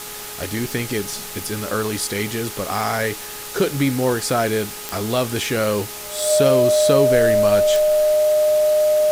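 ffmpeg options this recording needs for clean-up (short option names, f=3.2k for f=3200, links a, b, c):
-af "adeclick=t=4,bandreject=f=418:t=h:w=4,bandreject=f=836:t=h:w=4,bandreject=f=1.254k:t=h:w=4,bandreject=f=610:w=30,afwtdn=0.025"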